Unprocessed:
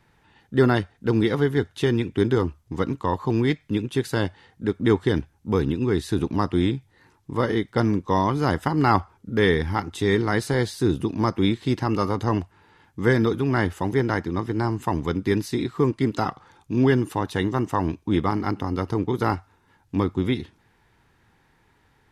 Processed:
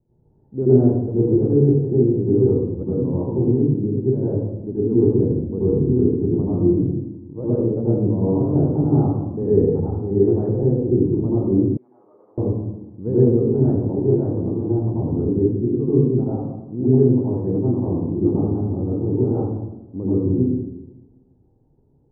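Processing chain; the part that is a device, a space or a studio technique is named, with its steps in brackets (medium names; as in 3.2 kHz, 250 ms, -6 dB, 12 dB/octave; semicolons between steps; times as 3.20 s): next room (low-pass 540 Hz 24 dB/octave; reverberation RT60 1.0 s, pre-delay 78 ms, DRR -9.5 dB); 11.77–12.38 s: Bessel high-pass 2.7 kHz, order 2; treble shelf 6 kHz -10.5 dB; trim -6 dB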